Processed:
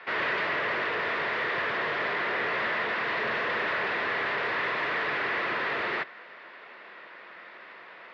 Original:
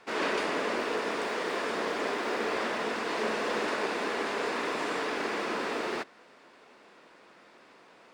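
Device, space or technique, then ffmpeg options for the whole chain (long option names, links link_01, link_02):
overdrive pedal into a guitar cabinet: -filter_complex "[0:a]asplit=2[link_01][link_02];[link_02]highpass=frequency=720:poles=1,volume=22dB,asoftclip=type=tanh:threshold=-17dB[link_03];[link_01][link_03]amix=inputs=2:normalize=0,lowpass=frequency=2900:poles=1,volume=-6dB,highpass=98,equalizer=frequency=140:width_type=q:width=4:gain=6,equalizer=frequency=270:width_type=q:width=4:gain=-7,equalizer=frequency=450:width_type=q:width=4:gain=-3,equalizer=frequency=810:width_type=q:width=4:gain=-4,equalizer=frequency=1900:width_type=q:width=4:gain=7,lowpass=frequency=4000:width=0.5412,lowpass=frequency=4000:width=1.3066,volume=-5dB"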